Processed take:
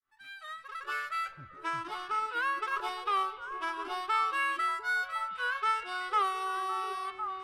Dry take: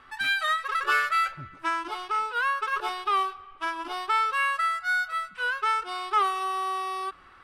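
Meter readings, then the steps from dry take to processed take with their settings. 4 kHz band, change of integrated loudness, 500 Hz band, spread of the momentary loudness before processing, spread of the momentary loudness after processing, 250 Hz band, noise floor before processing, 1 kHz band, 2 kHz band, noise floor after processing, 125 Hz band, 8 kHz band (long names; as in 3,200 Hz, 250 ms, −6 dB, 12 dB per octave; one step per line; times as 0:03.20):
−7.0 dB, −5.5 dB, −4.5 dB, 8 LU, 10 LU, −4.5 dB, −52 dBFS, −5.0 dB, −6.5 dB, −51 dBFS, can't be measured, −6.5 dB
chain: fade in at the beginning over 2.05 s
echo through a band-pass that steps 353 ms, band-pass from 150 Hz, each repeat 1.4 octaves, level −1.5 dB
level −5 dB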